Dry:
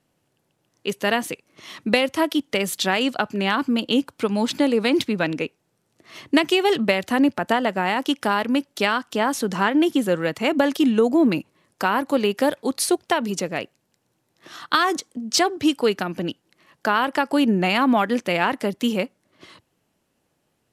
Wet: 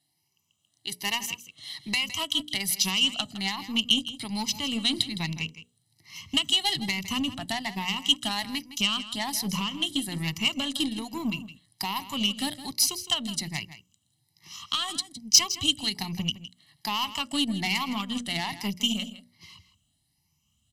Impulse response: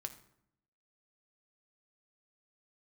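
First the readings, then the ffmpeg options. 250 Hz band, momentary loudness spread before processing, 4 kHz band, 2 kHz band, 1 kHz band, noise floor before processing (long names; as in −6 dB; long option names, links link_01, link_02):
−11.0 dB, 10 LU, +3.5 dB, −8.0 dB, −11.5 dB, −71 dBFS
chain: -filter_complex "[0:a]afftfilt=real='re*pow(10,11/40*sin(2*PI*(0.8*log(max(b,1)*sr/1024/100)/log(2)-(1.2)*(pts-256)/sr)))':imag='im*pow(10,11/40*sin(2*PI*(0.8*log(max(b,1)*sr/1024/100)/log(2)-(1.2)*(pts-256)/sr)))':win_size=1024:overlap=0.75,highpass=50,highshelf=frequency=4200:gain=-11,bandreject=frequency=60:width_type=h:width=6,bandreject=frequency=120:width_type=h:width=6,bandreject=frequency=180:width_type=h:width=6,bandreject=frequency=240:width_type=h:width=6,bandreject=frequency=300:width_type=h:width=6,bandreject=frequency=360:width_type=h:width=6,bandreject=frequency=420:width_type=h:width=6,bandreject=frequency=480:width_type=h:width=6,bandreject=frequency=540:width_type=h:width=6,bandreject=frequency=600:width_type=h:width=6,aecho=1:1:1:0.86,asubboost=boost=8.5:cutoff=130,alimiter=limit=-9.5dB:level=0:latency=1:release=213,aeval=exprs='0.335*(cos(1*acos(clip(val(0)/0.335,-1,1)))-cos(1*PI/2))+0.0266*(cos(3*acos(clip(val(0)/0.335,-1,1)))-cos(3*PI/2))+0.0119*(cos(4*acos(clip(val(0)/0.335,-1,1)))-cos(4*PI/2))':channel_layout=same,aexciter=amount=8.7:drive=5:freq=2500,asplit=2[link_01][link_02];[link_02]aecho=0:1:162:0.2[link_03];[link_01][link_03]amix=inputs=2:normalize=0,volume=-12.5dB"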